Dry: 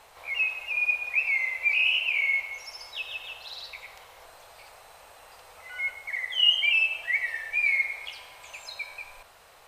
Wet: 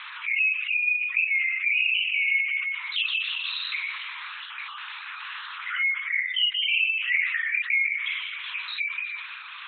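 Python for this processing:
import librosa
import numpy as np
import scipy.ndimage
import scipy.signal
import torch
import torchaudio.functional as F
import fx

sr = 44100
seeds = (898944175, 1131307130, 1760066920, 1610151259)

p1 = fx.spec_dropout(x, sr, seeds[0], share_pct=24)
p2 = fx.peak_eq(p1, sr, hz=1700.0, db=-4.5, octaves=0.32)
p3 = fx.doubler(p2, sr, ms=43.0, db=-4)
p4 = p3 + fx.echo_single(p3, sr, ms=330, db=-17.5, dry=0)
p5 = fx.rider(p4, sr, range_db=4, speed_s=0.5)
p6 = fx.lpc_vocoder(p5, sr, seeds[1], excitation='whisper', order=8)
p7 = scipy.signal.sosfilt(scipy.signal.butter(8, 1200.0, 'highpass', fs=sr, output='sos'), p6)
p8 = fx.spec_gate(p7, sr, threshold_db=-30, keep='strong')
y = fx.env_flatten(p8, sr, amount_pct=50)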